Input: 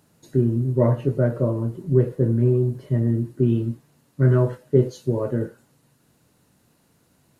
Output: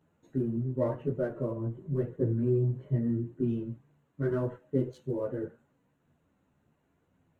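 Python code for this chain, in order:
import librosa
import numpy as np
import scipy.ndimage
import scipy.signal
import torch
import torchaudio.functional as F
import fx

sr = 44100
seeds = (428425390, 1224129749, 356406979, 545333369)

y = fx.wiener(x, sr, points=9)
y = fx.chorus_voices(y, sr, voices=2, hz=0.9, base_ms=13, depth_ms=2.1, mix_pct=55)
y = y * 10.0 ** (-5.5 / 20.0)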